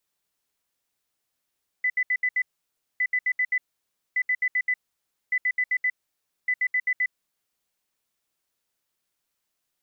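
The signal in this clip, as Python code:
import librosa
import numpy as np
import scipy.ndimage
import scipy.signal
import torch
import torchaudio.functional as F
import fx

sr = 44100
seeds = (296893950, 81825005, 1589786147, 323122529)

y = fx.beep_pattern(sr, wave='sine', hz=2000.0, on_s=0.06, off_s=0.07, beeps=5, pause_s=0.58, groups=5, level_db=-20.0)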